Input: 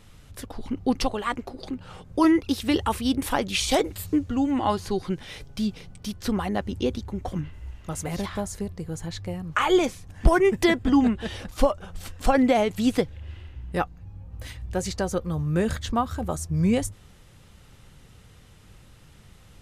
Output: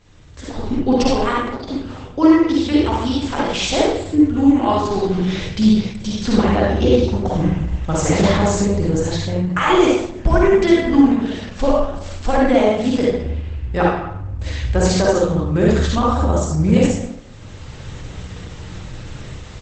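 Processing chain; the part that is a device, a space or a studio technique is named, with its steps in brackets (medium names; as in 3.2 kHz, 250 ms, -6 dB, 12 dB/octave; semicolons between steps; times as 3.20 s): speakerphone in a meeting room (reverberation RT60 0.75 s, pre-delay 45 ms, DRR -4.5 dB; speakerphone echo 220 ms, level -24 dB; level rider gain up to 14.5 dB; trim -1 dB; Opus 12 kbps 48 kHz)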